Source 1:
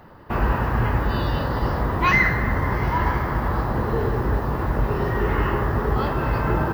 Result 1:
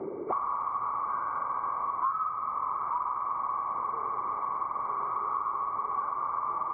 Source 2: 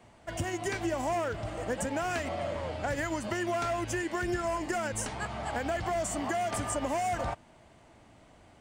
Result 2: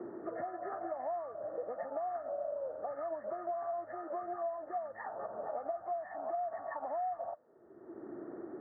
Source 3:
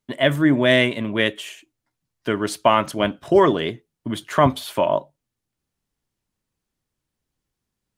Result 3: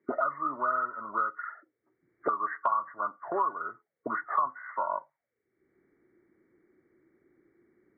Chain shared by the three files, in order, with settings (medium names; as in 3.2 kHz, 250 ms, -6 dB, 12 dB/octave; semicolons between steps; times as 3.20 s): knee-point frequency compression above 1.1 kHz 4:1; auto-wah 350–1100 Hz, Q 7.7, up, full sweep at -23 dBFS; three bands compressed up and down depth 100%